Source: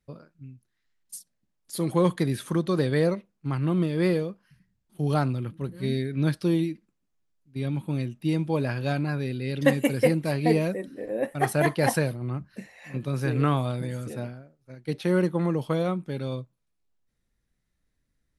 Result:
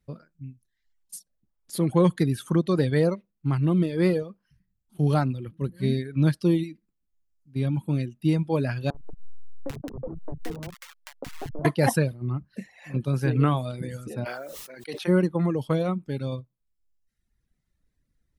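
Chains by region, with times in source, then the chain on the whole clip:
8.9–11.65 level-crossing sampler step -18.5 dBFS + compressor, threshold -31 dBFS + three bands offset in time mids, lows, highs 40/790 ms, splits 230/1000 Hz
14.24–15.07 HPF 610 Hz + added noise white -78 dBFS + sustainer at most 23 dB/s
whole clip: reverb removal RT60 1 s; low shelf 320 Hz +6 dB

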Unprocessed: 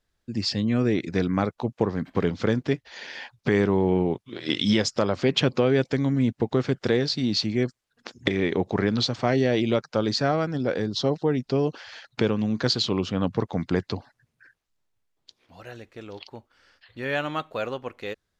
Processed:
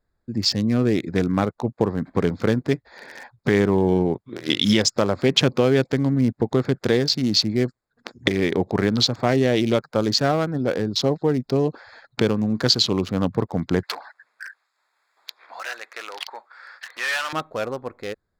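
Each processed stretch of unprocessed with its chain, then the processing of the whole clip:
13.83–17.33 overdrive pedal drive 26 dB, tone 2200 Hz, clips at -13 dBFS + HPF 1200 Hz + three-band squash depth 40%
whole clip: Wiener smoothing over 15 samples; high shelf 4900 Hz +10 dB; gain +3 dB

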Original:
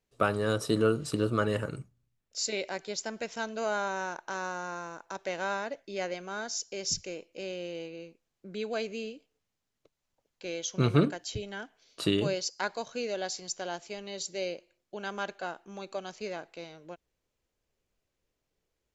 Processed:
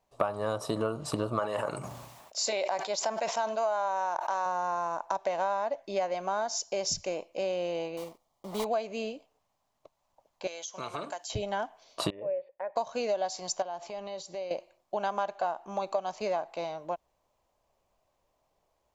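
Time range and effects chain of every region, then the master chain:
1.39–4.46 HPF 480 Hz 6 dB/oct + sustainer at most 45 dB/s
7.97–8.66 block floating point 3-bit + bell 1600 Hz -12.5 dB 0.26 oct + notch 2600 Hz, Q 7.3
10.47–11.3 HPF 1300 Hz 6 dB/oct + bell 7200 Hz +7 dB 0.57 oct + compressor 3:1, threshold -43 dBFS
12.1–12.76 vocal tract filter e + compressor 2:1, threshold -44 dBFS
13.62–14.51 Bessel low-pass 6100 Hz + compressor 12:1, threshold -43 dBFS
whole clip: band shelf 810 Hz +13.5 dB 1.2 oct; compressor 6:1, threshold -30 dBFS; gain +3 dB

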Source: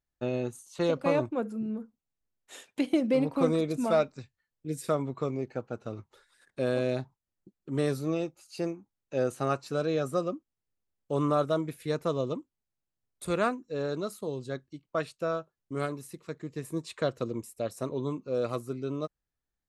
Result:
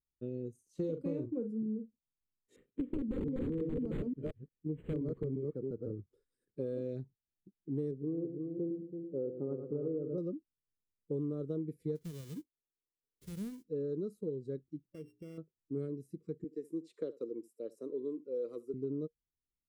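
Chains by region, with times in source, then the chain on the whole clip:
0.69–1.51 high shelf 4700 Hz +7 dB + doubler 43 ms -8 dB
2.56–5.99 reverse delay 0.175 s, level -2.5 dB + wrapped overs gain 18.5 dB + decimation joined by straight lines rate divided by 8×
7.91–10.18 LPF 1100 Hz 24 dB/oct + low shelf 100 Hz -10.5 dB + multi-head echo 0.11 s, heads first and third, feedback 41%, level -8.5 dB
11.95–13.64 spectral whitening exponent 0.1 + compressor 4:1, threshold -30 dBFS
14.82–15.38 sample sorter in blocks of 16 samples + notches 60/120/180/240/300/360/420 Hz + compressor 2:1, threshold -44 dBFS
16.44–18.74 Bessel high-pass 340 Hz, order 4 + echo 71 ms -19.5 dB
whole clip: spectral noise reduction 8 dB; EQ curve 470 Hz 0 dB, 700 Hz -28 dB, 2100 Hz -24 dB; compressor 6:1, threshold -34 dBFS; gain +1 dB

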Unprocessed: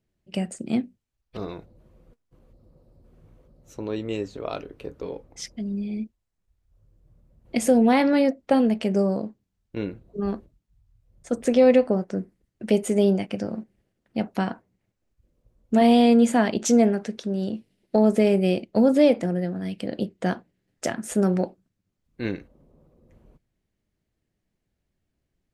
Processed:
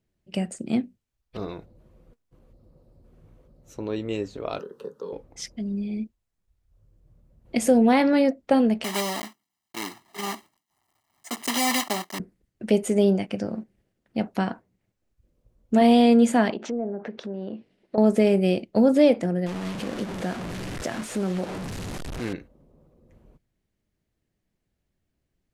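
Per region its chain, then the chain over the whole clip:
4.59–5.13 HPF 220 Hz + fixed phaser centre 450 Hz, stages 8 + three-band squash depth 70%
8.84–12.2 block floating point 3-bit + HPF 440 Hz + comb 1 ms, depth 93%
16.5–17.98 treble ducked by the level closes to 690 Hz, closed at -17 dBFS + compressor 2.5:1, threshold -36 dBFS + overdrive pedal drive 17 dB, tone 1100 Hz, clips at -8 dBFS
19.46–22.33 delta modulation 64 kbps, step -26.5 dBFS + high shelf 5600 Hz -9 dB + compressor 2:1, threshold -26 dBFS
whole clip: dry

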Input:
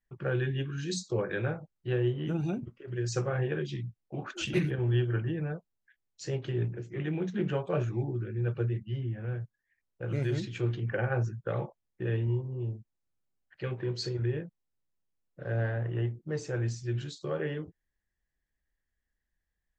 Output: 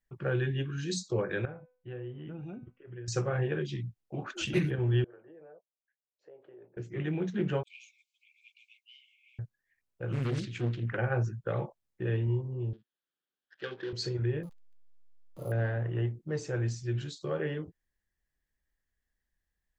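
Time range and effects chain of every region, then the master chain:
1.45–3.08 polynomial smoothing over 25 samples + resonator 250 Hz, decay 0.44 s + compressor 2:1, threshold -40 dBFS
5.04–6.77 ladder band-pass 640 Hz, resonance 45% + compressor, threshold -48 dBFS
7.63–9.39 brick-wall FIR high-pass 2100 Hz + Doppler distortion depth 0.22 ms
10.12–10.98 bell 590 Hz -8.5 dB 0.99 oct + Doppler distortion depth 0.68 ms
12.73–13.93 switching dead time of 0.13 ms + speaker cabinet 340–4300 Hz, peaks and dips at 670 Hz -7 dB, 950 Hz -4 dB, 1600 Hz +7 dB, 2200 Hz -5 dB, 3300 Hz +8 dB
14.43–15.52 zero-crossing step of -46.5 dBFS + brick-wall FIR band-stop 1400–5900 Hz + careless resampling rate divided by 4×, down none, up hold
whole clip: dry

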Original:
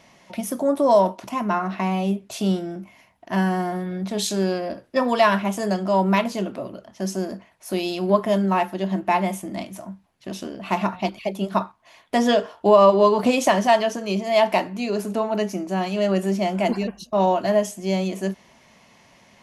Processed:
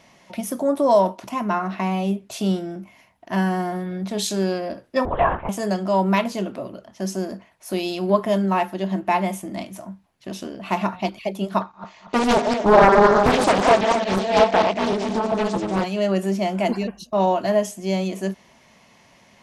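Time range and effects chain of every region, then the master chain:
5.05–5.49 LPF 1300 Hz + bell 200 Hz -13.5 dB 1 oct + LPC vocoder at 8 kHz whisper
11.61–15.84 regenerating reverse delay 0.116 s, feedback 62%, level -4 dB + careless resampling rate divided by 3×, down none, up filtered + Doppler distortion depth 0.96 ms
whole clip: dry

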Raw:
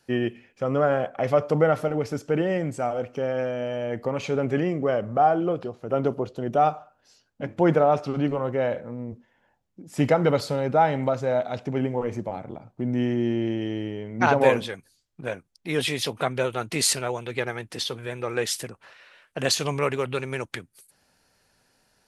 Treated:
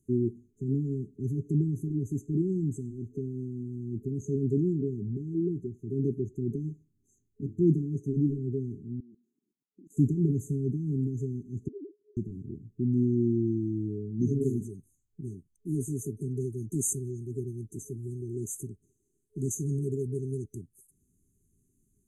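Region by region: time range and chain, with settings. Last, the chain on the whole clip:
9–9.97 HPF 220 Hz 24 dB/oct + level quantiser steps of 17 dB
11.68–12.17 sine-wave speech + HPF 1500 Hz 6 dB/oct
whole clip: FFT band-reject 430–6100 Hz; low shelf 210 Hz +10 dB; gain -5.5 dB

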